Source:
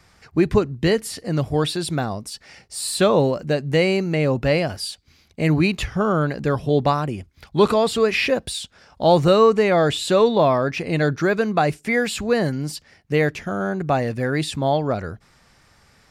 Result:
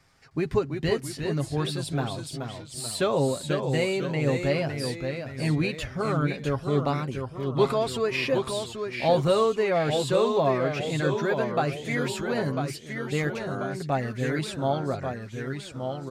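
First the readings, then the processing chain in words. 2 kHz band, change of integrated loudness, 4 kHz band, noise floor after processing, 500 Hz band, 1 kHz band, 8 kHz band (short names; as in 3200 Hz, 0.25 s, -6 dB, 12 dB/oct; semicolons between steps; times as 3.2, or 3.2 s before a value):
-6.5 dB, -6.5 dB, -6.5 dB, -42 dBFS, -6.0 dB, -6.5 dB, -6.5 dB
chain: comb 7.4 ms, depth 48%; echoes that change speed 0.31 s, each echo -1 st, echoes 3, each echo -6 dB; gain -8.5 dB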